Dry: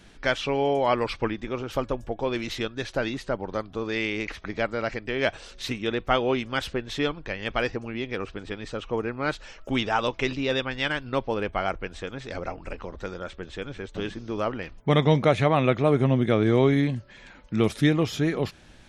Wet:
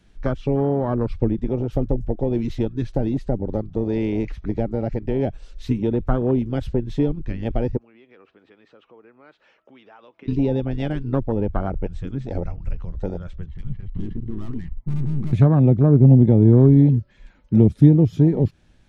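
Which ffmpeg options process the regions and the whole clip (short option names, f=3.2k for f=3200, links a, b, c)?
-filter_complex "[0:a]asettb=1/sr,asplit=3[a][b][c];[a]atrim=end=7.774[d];[b]atrim=start=7.77:end=10.28,asetpts=PTS-STARTPTS,afade=t=in:d=0.004:c=qsin,afade=t=out:st=2.506:d=0.004:c=qsin,acompressor=threshold=-37dB:ratio=3:attack=3.2:release=140:knee=1:detection=peak,highpass=330,lowpass=2.8k[e];[c]atrim=start=10.276[f];[d][e]acrossfade=d=0.004:c1=hsin:c2=qsin[g];[g][f]acrossfade=d=0.004:c1=qsin:c2=hsin,asettb=1/sr,asplit=3[h][i][j];[h]atrim=end=13.464[k];[i]atrim=start=13.46:end=15.33,asetpts=PTS-STARTPTS,afade=t=in:d=0.004:c=qsin,afade=t=out:st=1.866:d=0.004:c=qsin,lowpass=f=3k:w=0.5412,lowpass=f=3k:w=1.3066,aecho=1:1:1:0.86,atrim=end_sample=82467,aeval=exprs='(tanh(50.1*val(0)+0.75)-tanh(0.75))/50.1':c=same[l];[j]atrim=start=15.326[m];[k][l]acrossfade=d=0.004:c1=hsin:c2=qsin[n];[n][m]acrossfade=d=0.004:c1=qsin:c2=hsin,lowshelf=f=260:g=9,afwtdn=0.0794,acrossover=split=340[o][p];[p]acompressor=threshold=-31dB:ratio=10[q];[o][q]amix=inputs=2:normalize=0,volume=5.5dB"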